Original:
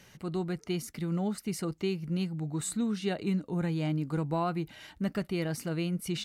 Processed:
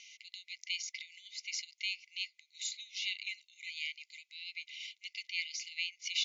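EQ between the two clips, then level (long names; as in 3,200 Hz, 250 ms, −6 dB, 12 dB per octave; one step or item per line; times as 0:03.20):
linear-phase brick-wall band-pass 2,000–7,300 Hz
high-frequency loss of the air 53 metres
parametric band 3,100 Hz −2.5 dB 1.6 octaves
+10.0 dB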